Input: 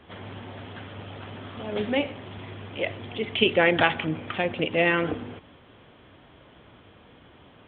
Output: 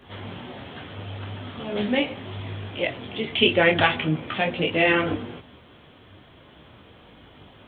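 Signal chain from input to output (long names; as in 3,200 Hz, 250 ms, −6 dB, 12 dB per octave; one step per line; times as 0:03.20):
bass and treble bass +2 dB, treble +9 dB
micro pitch shift up and down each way 14 cents
level +5.5 dB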